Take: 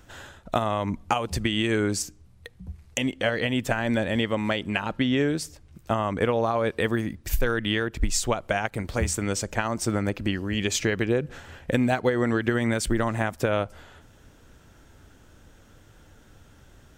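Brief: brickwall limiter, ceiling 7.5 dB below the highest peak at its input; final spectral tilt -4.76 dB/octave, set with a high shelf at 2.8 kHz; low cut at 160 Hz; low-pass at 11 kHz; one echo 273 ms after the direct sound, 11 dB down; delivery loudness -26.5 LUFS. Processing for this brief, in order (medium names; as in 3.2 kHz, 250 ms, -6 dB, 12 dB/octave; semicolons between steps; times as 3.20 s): high-pass 160 Hz; low-pass 11 kHz; treble shelf 2.8 kHz -6 dB; peak limiter -15.5 dBFS; delay 273 ms -11 dB; trim +2 dB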